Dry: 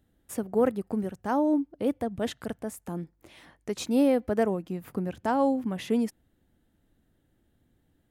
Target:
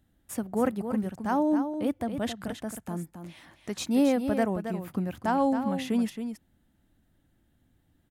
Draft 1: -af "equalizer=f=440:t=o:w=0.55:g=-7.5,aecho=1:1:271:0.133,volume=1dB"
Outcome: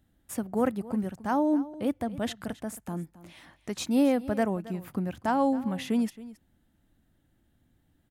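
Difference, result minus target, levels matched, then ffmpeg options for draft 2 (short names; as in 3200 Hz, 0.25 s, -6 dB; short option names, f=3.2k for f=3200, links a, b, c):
echo-to-direct -9 dB
-af "equalizer=f=440:t=o:w=0.55:g=-7.5,aecho=1:1:271:0.376,volume=1dB"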